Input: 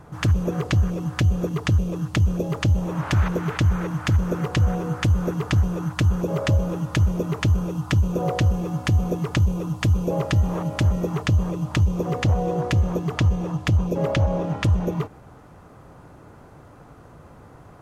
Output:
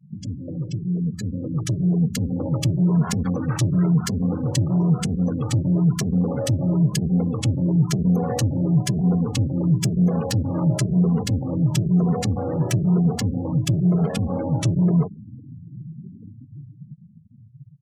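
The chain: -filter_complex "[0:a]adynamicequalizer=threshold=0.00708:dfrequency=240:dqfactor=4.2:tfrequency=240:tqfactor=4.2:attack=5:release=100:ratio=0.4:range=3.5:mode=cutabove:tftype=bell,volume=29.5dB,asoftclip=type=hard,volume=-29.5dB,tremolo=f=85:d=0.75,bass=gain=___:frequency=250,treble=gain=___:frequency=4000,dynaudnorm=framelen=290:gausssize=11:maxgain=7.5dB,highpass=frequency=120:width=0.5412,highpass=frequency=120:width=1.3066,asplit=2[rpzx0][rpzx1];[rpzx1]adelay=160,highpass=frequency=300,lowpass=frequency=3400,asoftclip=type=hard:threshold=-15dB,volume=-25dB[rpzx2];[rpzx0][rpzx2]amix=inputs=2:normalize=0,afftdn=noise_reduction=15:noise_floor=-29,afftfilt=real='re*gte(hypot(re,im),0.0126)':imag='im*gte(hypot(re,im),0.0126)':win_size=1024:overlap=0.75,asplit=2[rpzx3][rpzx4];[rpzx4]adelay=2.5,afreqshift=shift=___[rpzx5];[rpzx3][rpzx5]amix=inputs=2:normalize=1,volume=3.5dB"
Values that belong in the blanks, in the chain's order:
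13, 14, 1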